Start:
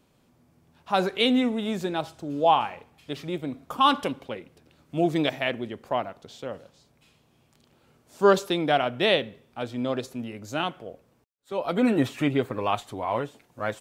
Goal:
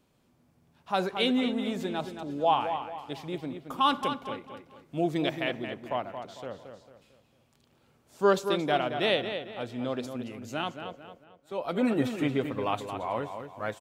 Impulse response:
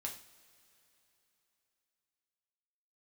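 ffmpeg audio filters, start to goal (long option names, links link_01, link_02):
-filter_complex "[0:a]asplit=2[link_01][link_02];[link_02]adelay=224,lowpass=frequency=4300:poles=1,volume=-8dB,asplit=2[link_03][link_04];[link_04]adelay=224,lowpass=frequency=4300:poles=1,volume=0.39,asplit=2[link_05][link_06];[link_06]adelay=224,lowpass=frequency=4300:poles=1,volume=0.39,asplit=2[link_07][link_08];[link_08]adelay=224,lowpass=frequency=4300:poles=1,volume=0.39[link_09];[link_01][link_03][link_05][link_07][link_09]amix=inputs=5:normalize=0,volume=-4.5dB"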